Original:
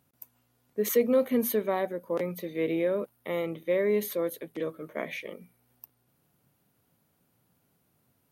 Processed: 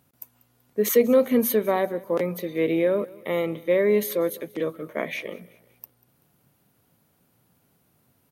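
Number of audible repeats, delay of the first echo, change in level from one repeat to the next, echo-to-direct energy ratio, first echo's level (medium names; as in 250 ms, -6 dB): 2, 191 ms, -7.0 dB, -21.0 dB, -22.0 dB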